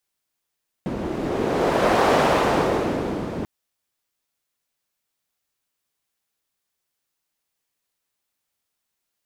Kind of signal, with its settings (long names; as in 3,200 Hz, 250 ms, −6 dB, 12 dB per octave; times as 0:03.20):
wind from filtered noise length 2.59 s, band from 280 Hz, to 670 Hz, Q 1.1, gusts 1, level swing 10.5 dB